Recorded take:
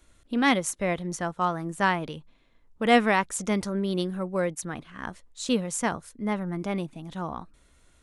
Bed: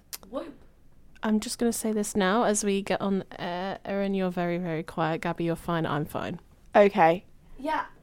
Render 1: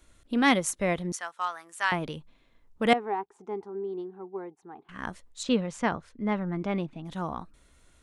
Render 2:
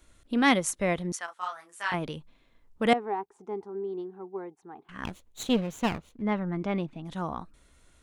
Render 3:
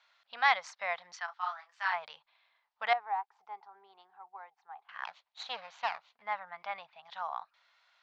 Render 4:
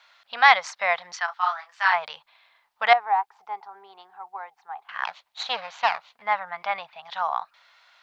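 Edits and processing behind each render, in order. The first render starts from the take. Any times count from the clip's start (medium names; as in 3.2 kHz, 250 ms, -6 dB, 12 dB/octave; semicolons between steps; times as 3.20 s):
1.12–1.92 s: high-pass 1.2 kHz; 2.93–4.89 s: two resonant band-passes 570 Hz, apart 1 oct; 5.43–7.06 s: low-pass 3.7 kHz
1.26–1.94 s: detune thickener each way 32 cents; 2.90–3.69 s: peaking EQ 2.4 kHz -3 dB 2.4 oct; 5.05–6.22 s: comb filter that takes the minimum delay 0.3 ms
elliptic band-pass 760–4800 Hz, stop band 40 dB; dynamic bell 3 kHz, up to -6 dB, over -49 dBFS, Q 2.2
trim +11.5 dB; peak limiter -3 dBFS, peak gain reduction 1 dB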